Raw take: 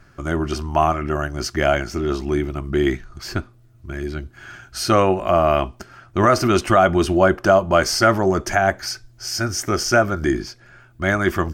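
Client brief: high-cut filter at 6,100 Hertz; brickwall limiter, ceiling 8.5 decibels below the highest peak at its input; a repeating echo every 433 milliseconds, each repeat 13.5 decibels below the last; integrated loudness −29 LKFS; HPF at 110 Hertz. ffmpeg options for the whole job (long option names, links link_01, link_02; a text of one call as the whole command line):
ffmpeg -i in.wav -af "highpass=110,lowpass=6100,alimiter=limit=-10dB:level=0:latency=1,aecho=1:1:433|866:0.211|0.0444,volume=-6dB" out.wav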